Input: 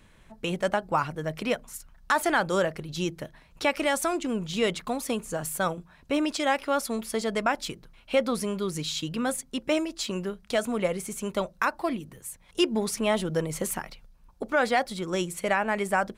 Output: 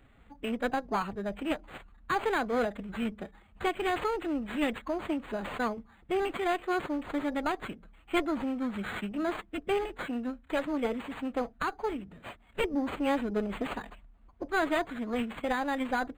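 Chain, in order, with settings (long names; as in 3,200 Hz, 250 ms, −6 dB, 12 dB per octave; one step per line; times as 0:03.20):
one-sided soft clipper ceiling −22.5 dBFS
phase-vocoder pitch shift with formants kept +4.5 semitones
linearly interpolated sample-rate reduction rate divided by 8×
level −1.5 dB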